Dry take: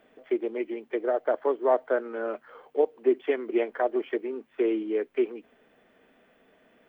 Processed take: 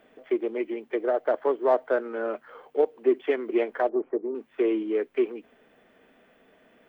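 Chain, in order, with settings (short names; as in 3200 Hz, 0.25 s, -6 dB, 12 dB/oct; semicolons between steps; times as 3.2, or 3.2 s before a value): in parallel at -11 dB: soft clip -26 dBFS, distortion -8 dB; 3.89–4.35 on the sum: LPF 1100 Hz 24 dB/oct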